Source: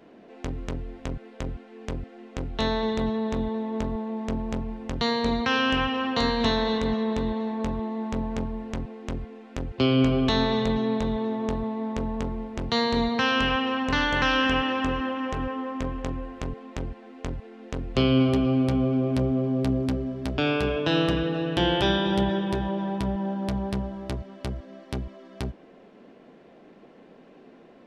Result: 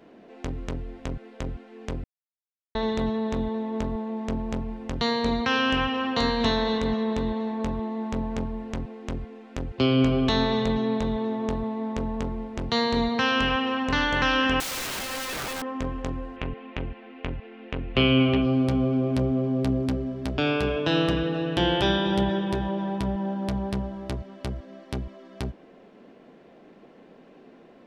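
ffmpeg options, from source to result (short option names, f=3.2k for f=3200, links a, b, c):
-filter_complex "[0:a]asettb=1/sr,asplit=3[a][b][c];[a]atrim=end=14.604[d];[b]atrim=start=14.6:end=15.62,asetpts=PTS-STARTPTS,afade=t=in:d=0.004:c=qsin,afade=t=out:st=1.016:d=0.004:c=qsin,aeval=exprs='(mod(22.4*val(0)+1,2)-1)/22.4':c=same[e];[c]atrim=start=15.616[f];[d][e]acrossfade=d=0.004:c1=hsin:c2=qsin[g];[g][f]acrossfade=d=0.004:c1=qsin:c2=hsin,asettb=1/sr,asplit=3[h][i][j];[h]atrim=end=16.364[k];[i]atrim=start=16.36:end=18.42,asetpts=PTS-STARTPTS,afade=t=in:d=0.004:c=qsin,afade=t=out:st=2.056:d=0.004:c=qsin,lowpass=f=2.7k:t=q:w=2.7[l];[j]atrim=start=18.416[m];[k][l]acrossfade=d=0.004:c1=hsin:c2=qsin[n];[n][m]acrossfade=d=0.004:c1=qsin:c2=hsin,asplit=3[o][p][q];[o]atrim=end=2.04,asetpts=PTS-STARTPTS,afade=t=out:st=2.036:d=0.004:c=hsin[r];[p]atrim=start=2.04:end=2.75,asetpts=PTS-STARTPTS,volume=0[s];[q]atrim=start=2.75,asetpts=PTS-STARTPTS,afade=t=in:d=0.004:c=hsin[t];[r][s][t]concat=n=3:v=0:a=1"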